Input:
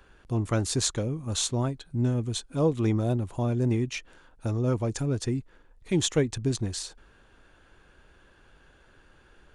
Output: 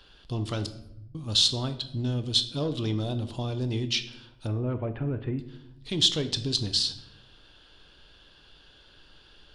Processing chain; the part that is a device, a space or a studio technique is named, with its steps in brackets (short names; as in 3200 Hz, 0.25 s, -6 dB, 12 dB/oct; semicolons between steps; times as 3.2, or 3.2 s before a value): 0.66–1.15 inverse Chebyshev band-stop 260–7700 Hz, stop band 60 dB; 4.47–5.39 steep low-pass 2400 Hz 48 dB/oct; soft clipper into limiter (soft clip -14 dBFS, distortion -25 dB; limiter -21 dBFS, peak gain reduction 5.5 dB); band shelf 3900 Hz +15.5 dB 1.1 oct; shoebox room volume 230 m³, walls mixed, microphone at 0.4 m; gain -2 dB